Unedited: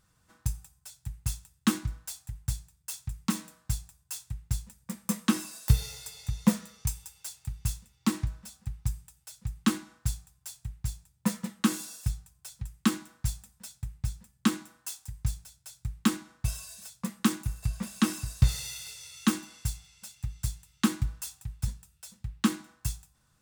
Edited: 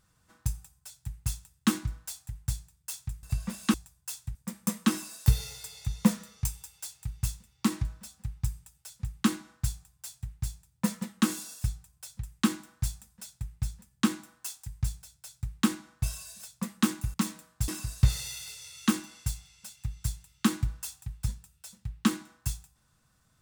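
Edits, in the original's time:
3.23–3.77 swap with 17.56–18.07
4.38–4.77 cut

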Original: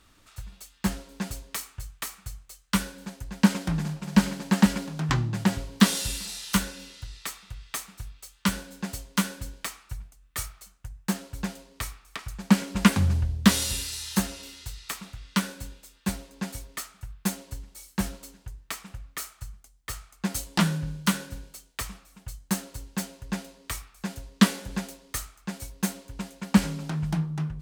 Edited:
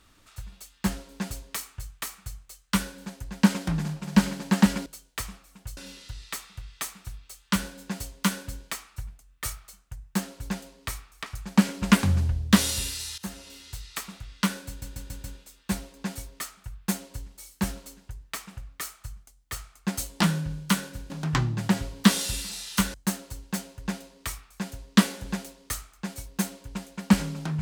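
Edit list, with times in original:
4.86–6.7 swap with 21.47–22.38
14.11–14.89 fade in equal-power, from -17.5 dB
15.61 stutter 0.14 s, 5 plays

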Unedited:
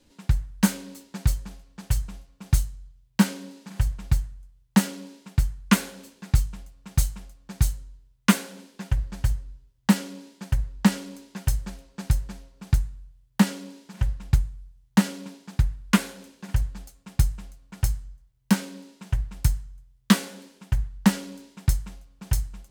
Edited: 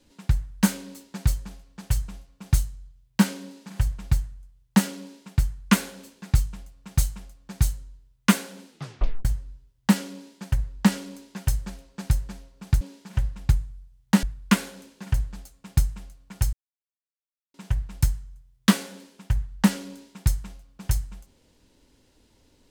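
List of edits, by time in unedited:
8.68 tape stop 0.57 s
12.81–13.65 cut
15.07–15.65 cut
17.95–18.96 mute

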